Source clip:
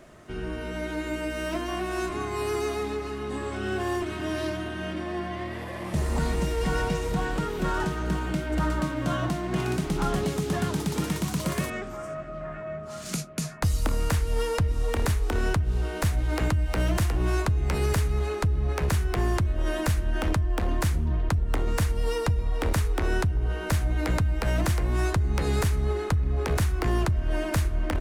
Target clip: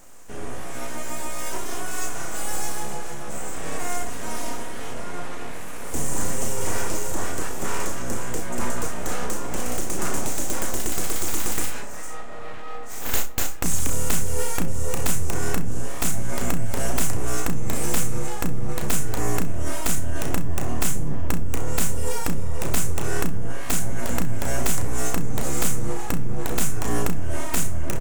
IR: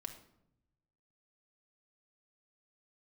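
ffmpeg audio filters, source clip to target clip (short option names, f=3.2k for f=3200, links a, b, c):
-filter_complex "[0:a]highshelf=f=5.4k:t=q:w=3:g=10,aeval=exprs='abs(val(0))':c=same,aecho=1:1:34|65:0.447|0.141,asplit=2[a][b];[1:a]atrim=start_sample=2205[c];[b][c]afir=irnorm=-1:irlink=0,volume=-3.5dB[d];[a][d]amix=inputs=2:normalize=0,volume=-2.5dB"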